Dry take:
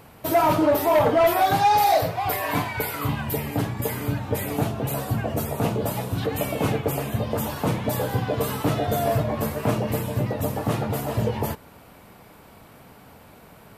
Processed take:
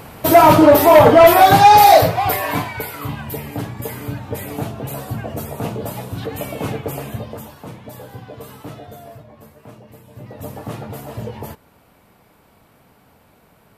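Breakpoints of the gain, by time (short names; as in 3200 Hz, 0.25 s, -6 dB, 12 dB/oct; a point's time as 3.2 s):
1.99 s +10.5 dB
2.9 s -1 dB
7.12 s -1 dB
7.56 s -11 dB
8.72 s -11 dB
9.2 s -18 dB
10.03 s -18 dB
10.47 s -5 dB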